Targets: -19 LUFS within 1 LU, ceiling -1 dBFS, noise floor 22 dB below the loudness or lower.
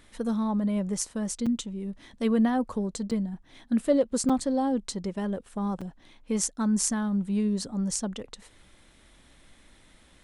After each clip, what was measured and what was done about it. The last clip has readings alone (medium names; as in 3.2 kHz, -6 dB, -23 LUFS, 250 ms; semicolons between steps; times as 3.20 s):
dropouts 4; longest dropout 5.6 ms; loudness -28.5 LUFS; peak level -8.0 dBFS; loudness target -19.0 LUFS
-> interpolate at 1.46/3.11/4.29/5.81 s, 5.6 ms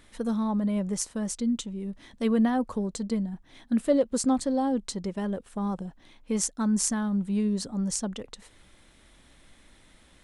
dropouts 0; loudness -28.5 LUFS; peak level -8.0 dBFS; loudness target -19.0 LUFS
-> trim +9.5 dB; peak limiter -1 dBFS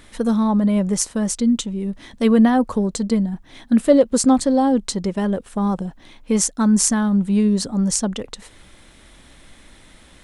loudness -19.0 LUFS; peak level -1.0 dBFS; noise floor -48 dBFS